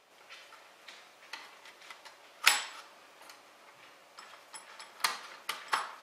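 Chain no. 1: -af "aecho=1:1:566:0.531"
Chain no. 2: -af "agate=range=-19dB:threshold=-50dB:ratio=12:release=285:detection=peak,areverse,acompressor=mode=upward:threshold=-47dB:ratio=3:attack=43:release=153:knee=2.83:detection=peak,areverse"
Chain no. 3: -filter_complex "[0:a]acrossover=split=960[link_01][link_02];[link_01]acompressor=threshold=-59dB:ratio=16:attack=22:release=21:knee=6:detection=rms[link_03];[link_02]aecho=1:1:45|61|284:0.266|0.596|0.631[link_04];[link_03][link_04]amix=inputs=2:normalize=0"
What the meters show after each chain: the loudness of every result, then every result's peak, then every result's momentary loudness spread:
−32.0, −32.5, −30.5 LKFS; −3.5, −3.5, −3.0 dBFS; 24, 24, 24 LU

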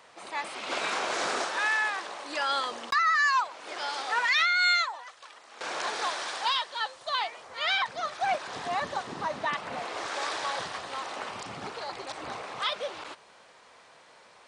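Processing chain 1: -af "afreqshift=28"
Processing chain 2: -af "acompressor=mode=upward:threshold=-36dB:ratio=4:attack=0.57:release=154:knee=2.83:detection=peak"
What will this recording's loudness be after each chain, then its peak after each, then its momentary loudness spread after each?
−29.0, −29.0 LKFS; −14.5, −14.0 dBFS; 15, 19 LU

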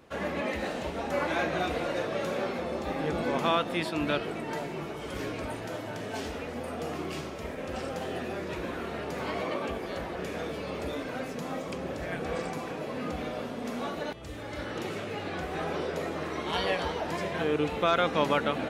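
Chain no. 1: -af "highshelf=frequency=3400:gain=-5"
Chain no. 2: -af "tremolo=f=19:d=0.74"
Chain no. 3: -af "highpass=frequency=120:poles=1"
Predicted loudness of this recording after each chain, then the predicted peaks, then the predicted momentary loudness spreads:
−33.0, −35.5, −33.0 LKFS; −12.5, −13.0, −12.0 dBFS; 9, 9, 10 LU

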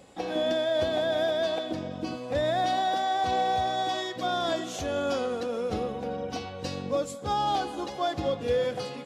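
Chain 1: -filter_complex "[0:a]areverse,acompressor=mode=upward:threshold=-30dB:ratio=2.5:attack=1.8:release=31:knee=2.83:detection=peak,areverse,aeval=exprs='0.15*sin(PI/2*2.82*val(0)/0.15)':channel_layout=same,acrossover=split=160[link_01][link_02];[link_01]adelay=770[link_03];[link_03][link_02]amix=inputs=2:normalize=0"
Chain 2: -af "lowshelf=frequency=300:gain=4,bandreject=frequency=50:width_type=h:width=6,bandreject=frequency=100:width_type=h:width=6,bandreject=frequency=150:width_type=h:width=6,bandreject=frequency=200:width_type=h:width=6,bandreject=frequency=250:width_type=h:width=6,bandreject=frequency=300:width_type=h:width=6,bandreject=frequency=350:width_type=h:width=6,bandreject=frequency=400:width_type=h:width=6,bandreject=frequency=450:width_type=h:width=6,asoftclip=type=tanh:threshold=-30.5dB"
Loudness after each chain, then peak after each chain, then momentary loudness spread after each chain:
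−20.5, −34.0 LKFS; −10.0, −30.5 dBFS; 4, 4 LU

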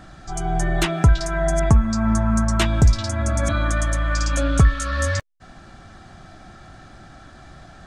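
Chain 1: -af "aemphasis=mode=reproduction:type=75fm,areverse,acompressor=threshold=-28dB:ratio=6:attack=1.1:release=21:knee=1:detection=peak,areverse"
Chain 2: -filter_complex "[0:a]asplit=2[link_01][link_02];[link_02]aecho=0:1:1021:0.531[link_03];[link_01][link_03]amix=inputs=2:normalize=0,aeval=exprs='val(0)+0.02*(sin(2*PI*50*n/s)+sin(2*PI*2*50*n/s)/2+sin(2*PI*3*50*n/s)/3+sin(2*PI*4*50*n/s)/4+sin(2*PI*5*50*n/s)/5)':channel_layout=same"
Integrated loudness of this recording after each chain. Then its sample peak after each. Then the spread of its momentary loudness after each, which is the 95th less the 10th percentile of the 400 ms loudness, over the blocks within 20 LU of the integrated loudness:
−32.0, −20.0 LKFS; −20.0, −3.5 dBFS; 14, 20 LU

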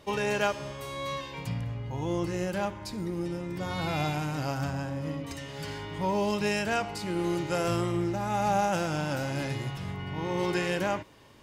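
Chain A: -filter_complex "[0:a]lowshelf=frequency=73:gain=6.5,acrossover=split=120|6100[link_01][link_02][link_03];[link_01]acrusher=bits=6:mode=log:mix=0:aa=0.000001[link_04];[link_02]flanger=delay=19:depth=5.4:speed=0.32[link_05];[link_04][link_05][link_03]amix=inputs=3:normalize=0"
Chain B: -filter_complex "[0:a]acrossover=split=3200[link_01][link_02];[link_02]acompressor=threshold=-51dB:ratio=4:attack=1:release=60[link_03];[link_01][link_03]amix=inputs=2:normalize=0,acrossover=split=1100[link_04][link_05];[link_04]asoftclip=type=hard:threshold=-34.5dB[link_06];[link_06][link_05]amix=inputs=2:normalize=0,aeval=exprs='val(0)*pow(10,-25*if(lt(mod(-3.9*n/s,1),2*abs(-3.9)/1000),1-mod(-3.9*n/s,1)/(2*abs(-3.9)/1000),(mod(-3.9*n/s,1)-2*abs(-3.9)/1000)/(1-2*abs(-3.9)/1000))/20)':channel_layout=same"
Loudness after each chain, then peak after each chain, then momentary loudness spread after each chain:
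−33.0, −43.0 LKFS; −17.5, −24.0 dBFS; 9, 6 LU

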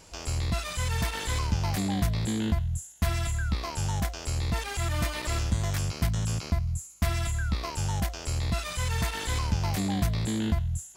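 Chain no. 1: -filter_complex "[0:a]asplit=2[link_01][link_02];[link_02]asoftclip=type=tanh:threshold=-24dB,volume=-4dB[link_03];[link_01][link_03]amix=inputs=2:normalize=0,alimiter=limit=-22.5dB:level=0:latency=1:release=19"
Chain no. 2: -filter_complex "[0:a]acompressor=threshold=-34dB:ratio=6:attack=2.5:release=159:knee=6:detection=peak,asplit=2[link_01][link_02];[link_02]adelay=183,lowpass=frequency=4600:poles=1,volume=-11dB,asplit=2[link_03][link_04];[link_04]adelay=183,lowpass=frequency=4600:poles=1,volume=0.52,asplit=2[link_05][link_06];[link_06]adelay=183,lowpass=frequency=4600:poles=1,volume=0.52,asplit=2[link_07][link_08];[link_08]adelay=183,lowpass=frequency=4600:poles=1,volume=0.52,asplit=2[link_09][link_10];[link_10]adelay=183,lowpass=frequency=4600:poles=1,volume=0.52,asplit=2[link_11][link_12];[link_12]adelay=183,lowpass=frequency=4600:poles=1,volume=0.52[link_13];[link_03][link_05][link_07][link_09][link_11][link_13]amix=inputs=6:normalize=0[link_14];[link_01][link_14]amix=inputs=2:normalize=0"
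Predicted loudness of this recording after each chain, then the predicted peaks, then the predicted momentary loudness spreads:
−30.0, −38.0 LKFS; −22.5, −25.5 dBFS; 3, 2 LU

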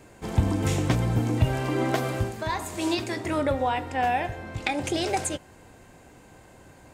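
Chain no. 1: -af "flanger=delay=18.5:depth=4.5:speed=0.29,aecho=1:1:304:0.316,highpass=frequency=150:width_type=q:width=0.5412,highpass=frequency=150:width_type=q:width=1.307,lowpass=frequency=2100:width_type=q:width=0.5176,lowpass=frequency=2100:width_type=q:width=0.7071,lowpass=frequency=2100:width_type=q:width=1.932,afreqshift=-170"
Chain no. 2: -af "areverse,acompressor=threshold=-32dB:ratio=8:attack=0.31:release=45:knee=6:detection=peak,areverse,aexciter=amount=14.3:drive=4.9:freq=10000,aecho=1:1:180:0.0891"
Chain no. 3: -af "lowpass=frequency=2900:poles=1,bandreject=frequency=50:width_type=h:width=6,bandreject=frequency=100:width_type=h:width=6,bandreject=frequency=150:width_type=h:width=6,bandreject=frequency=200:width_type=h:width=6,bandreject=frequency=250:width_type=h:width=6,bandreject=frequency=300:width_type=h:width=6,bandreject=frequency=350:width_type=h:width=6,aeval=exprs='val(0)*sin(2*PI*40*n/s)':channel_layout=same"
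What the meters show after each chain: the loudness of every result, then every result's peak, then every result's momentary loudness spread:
−32.0, −35.0, −31.0 LKFS; −15.5, −14.5, −11.5 dBFS; 9, 15, 6 LU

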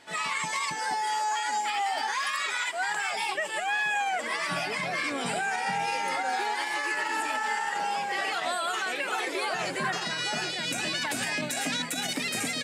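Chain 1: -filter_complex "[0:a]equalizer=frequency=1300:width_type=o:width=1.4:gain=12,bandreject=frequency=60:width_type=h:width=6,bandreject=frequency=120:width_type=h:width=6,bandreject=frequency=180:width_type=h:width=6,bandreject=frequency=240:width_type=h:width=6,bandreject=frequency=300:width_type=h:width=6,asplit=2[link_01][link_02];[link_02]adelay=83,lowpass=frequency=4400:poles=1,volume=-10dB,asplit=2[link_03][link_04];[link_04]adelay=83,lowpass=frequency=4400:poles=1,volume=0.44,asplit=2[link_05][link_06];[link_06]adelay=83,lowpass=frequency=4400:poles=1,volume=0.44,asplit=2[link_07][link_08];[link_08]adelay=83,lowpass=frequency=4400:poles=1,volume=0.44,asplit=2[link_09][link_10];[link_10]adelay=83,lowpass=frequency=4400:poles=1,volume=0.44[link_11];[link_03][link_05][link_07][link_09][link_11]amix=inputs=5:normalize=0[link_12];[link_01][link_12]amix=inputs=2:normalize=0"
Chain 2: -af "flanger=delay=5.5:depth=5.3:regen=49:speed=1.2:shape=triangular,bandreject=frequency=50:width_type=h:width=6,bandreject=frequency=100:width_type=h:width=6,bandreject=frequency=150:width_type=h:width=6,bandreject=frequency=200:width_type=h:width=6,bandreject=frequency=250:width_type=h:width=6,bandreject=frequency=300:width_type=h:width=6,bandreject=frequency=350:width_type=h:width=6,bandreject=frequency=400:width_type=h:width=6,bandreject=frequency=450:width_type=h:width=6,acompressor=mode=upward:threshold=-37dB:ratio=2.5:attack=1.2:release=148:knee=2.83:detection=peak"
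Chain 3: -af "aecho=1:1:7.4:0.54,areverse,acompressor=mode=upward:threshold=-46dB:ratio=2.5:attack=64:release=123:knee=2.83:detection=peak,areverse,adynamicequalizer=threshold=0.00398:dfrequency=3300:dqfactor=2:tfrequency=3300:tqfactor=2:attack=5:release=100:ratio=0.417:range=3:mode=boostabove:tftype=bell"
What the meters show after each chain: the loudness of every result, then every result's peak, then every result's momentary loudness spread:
−21.5, −32.5, −26.0 LKFS; −9.0, −22.0, −14.0 dBFS; 4, 2, 2 LU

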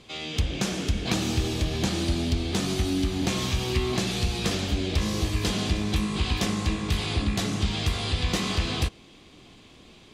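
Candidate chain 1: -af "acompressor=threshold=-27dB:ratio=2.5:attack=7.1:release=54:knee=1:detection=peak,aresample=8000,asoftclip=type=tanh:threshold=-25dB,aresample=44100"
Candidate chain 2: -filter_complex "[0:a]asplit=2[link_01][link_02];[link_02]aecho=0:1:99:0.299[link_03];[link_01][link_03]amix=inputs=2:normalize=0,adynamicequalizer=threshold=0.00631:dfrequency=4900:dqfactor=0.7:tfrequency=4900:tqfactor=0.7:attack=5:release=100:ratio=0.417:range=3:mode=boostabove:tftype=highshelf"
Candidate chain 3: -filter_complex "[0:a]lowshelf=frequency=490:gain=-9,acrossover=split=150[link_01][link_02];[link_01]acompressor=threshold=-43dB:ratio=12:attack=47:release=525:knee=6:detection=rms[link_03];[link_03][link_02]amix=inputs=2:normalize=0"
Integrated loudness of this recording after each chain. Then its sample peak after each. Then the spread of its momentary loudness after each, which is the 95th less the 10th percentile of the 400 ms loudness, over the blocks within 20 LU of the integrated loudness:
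−32.0, −26.0, −31.0 LKFS; −22.0, −10.0, −15.0 dBFS; 5, 2, 3 LU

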